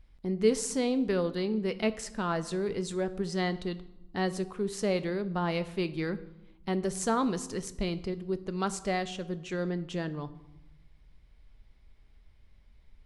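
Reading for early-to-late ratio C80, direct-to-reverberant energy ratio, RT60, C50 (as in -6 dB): 18.5 dB, 11.5 dB, 0.95 s, 16.0 dB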